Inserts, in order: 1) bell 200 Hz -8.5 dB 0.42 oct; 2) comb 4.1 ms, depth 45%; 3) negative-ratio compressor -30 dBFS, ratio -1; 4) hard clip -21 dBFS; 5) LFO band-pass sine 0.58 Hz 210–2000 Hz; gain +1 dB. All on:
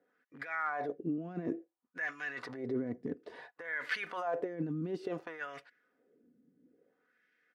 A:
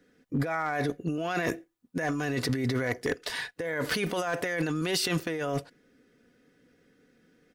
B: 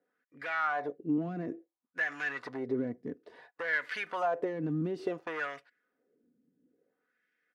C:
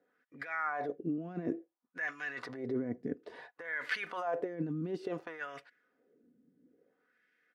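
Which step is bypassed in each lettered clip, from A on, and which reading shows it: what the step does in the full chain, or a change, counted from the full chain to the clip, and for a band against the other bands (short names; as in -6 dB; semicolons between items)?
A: 5, 4 kHz band +10.0 dB; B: 3, crest factor change -2.5 dB; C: 4, distortion -22 dB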